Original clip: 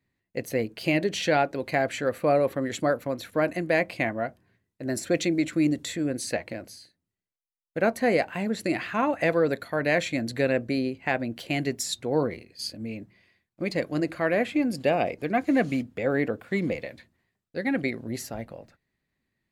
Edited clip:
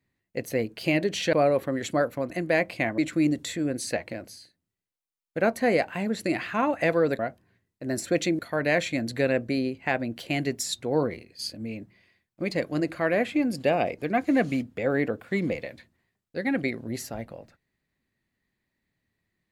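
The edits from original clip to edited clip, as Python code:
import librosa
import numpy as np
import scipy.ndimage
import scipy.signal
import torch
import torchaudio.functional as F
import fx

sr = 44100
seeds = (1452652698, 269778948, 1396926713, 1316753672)

y = fx.edit(x, sr, fx.cut(start_s=1.33, length_s=0.89),
    fx.cut(start_s=3.19, length_s=0.31),
    fx.move(start_s=4.18, length_s=1.2, to_s=9.59), tone=tone)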